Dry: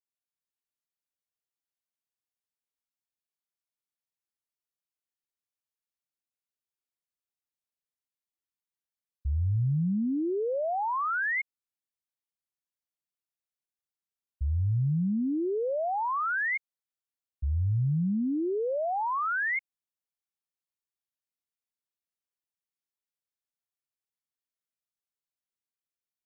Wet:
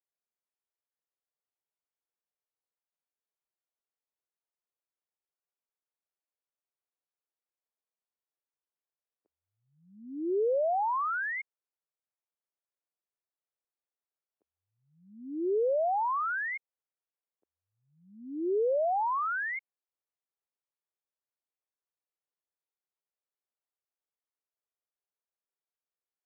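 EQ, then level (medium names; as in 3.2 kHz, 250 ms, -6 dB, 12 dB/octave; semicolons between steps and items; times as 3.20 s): steep high-pass 370 Hz 36 dB/octave; distance through air 480 m; treble shelf 2 kHz -11.5 dB; +4.5 dB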